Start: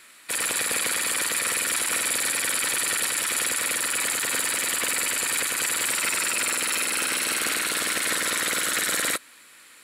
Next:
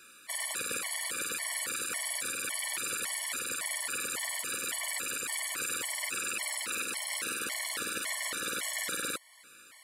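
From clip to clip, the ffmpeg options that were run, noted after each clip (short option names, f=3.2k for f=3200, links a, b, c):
-af "alimiter=limit=-19dB:level=0:latency=1:release=349,afftfilt=real='re*gt(sin(2*PI*1.8*pts/sr)*(1-2*mod(floor(b*sr/1024/580),2)),0)':imag='im*gt(sin(2*PI*1.8*pts/sr)*(1-2*mod(floor(b*sr/1024/580),2)),0)':win_size=1024:overlap=0.75,volume=-1.5dB"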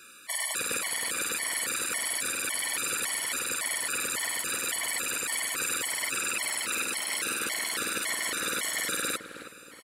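-filter_complex "[0:a]asplit=2[a][b];[b]adelay=317,lowpass=f=1.4k:p=1,volume=-8dB,asplit=2[c][d];[d]adelay=317,lowpass=f=1.4k:p=1,volume=0.44,asplit=2[e][f];[f]adelay=317,lowpass=f=1.4k:p=1,volume=0.44,asplit=2[g][h];[h]adelay=317,lowpass=f=1.4k:p=1,volume=0.44,asplit=2[i][j];[j]adelay=317,lowpass=f=1.4k:p=1,volume=0.44[k];[a][c][e][g][i][k]amix=inputs=6:normalize=0,volume=4dB"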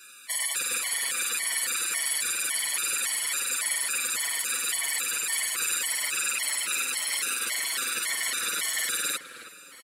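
-filter_complex "[0:a]tiltshelf=f=970:g=-6.5,asplit=2[a][b];[b]adelay=6.6,afreqshift=-2.1[c];[a][c]amix=inputs=2:normalize=1"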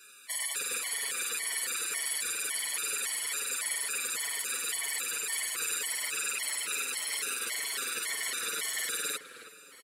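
-af "equalizer=f=430:t=o:w=0.26:g=10.5,volume=-5dB"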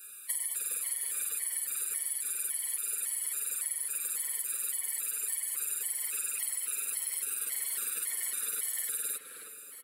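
-af "bandreject=f=121.4:t=h:w=4,bandreject=f=242.8:t=h:w=4,bandreject=f=364.2:t=h:w=4,bandreject=f=485.6:t=h:w=4,bandreject=f=607:t=h:w=4,bandreject=f=728.4:t=h:w=4,bandreject=f=849.8:t=h:w=4,bandreject=f=971.2:t=h:w=4,bandreject=f=1.0926k:t=h:w=4,bandreject=f=1.214k:t=h:w=4,bandreject=f=1.3354k:t=h:w=4,bandreject=f=1.4568k:t=h:w=4,bandreject=f=1.5782k:t=h:w=4,bandreject=f=1.6996k:t=h:w=4,bandreject=f=1.821k:t=h:w=4,bandreject=f=1.9424k:t=h:w=4,bandreject=f=2.0638k:t=h:w=4,bandreject=f=2.1852k:t=h:w=4,bandreject=f=2.3066k:t=h:w=4,bandreject=f=2.428k:t=h:w=4,bandreject=f=2.5494k:t=h:w=4,bandreject=f=2.6708k:t=h:w=4,bandreject=f=2.7922k:t=h:w=4,bandreject=f=2.9136k:t=h:w=4,bandreject=f=3.035k:t=h:w=4,bandreject=f=3.1564k:t=h:w=4,bandreject=f=3.2778k:t=h:w=4,bandreject=f=3.3992k:t=h:w=4,bandreject=f=3.5206k:t=h:w=4,bandreject=f=3.642k:t=h:w=4,bandreject=f=3.7634k:t=h:w=4,bandreject=f=3.8848k:t=h:w=4,aexciter=amount=7.8:drive=2.1:freq=8.5k,acompressor=threshold=-27dB:ratio=10,volume=-3.5dB"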